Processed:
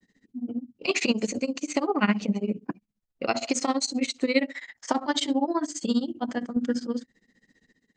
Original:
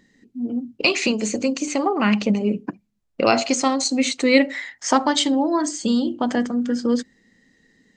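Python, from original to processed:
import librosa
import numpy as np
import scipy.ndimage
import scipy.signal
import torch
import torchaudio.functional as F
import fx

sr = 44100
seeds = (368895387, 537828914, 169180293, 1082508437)

y = fx.tremolo_random(x, sr, seeds[0], hz=3.5, depth_pct=55)
y = fx.granulator(y, sr, seeds[1], grain_ms=76.0, per_s=15.0, spray_ms=18.0, spread_st=0)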